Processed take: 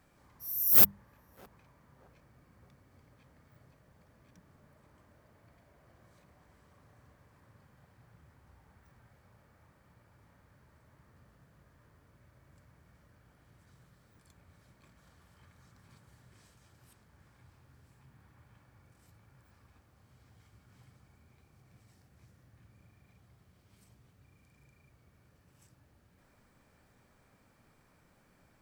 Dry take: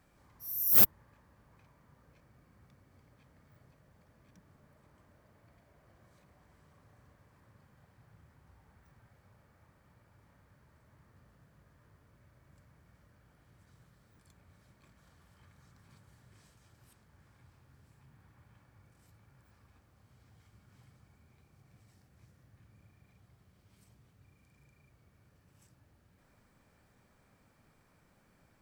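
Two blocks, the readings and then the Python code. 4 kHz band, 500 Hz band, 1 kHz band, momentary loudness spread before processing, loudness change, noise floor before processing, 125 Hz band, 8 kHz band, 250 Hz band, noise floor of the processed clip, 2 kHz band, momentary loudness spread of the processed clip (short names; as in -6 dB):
+1.5 dB, +1.5 dB, +1.5 dB, 14 LU, +1.5 dB, -68 dBFS, +0.5 dB, +1.5 dB, +0.5 dB, -67 dBFS, +1.5 dB, 14 LU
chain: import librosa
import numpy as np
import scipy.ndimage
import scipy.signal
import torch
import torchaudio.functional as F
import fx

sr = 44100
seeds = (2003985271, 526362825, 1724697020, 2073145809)

y = fx.hum_notches(x, sr, base_hz=50, count=4)
y = fx.echo_banded(y, sr, ms=617, feedback_pct=45, hz=630.0, wet_db=-18)
y = y * librosa.db_to_amplitude(1.5)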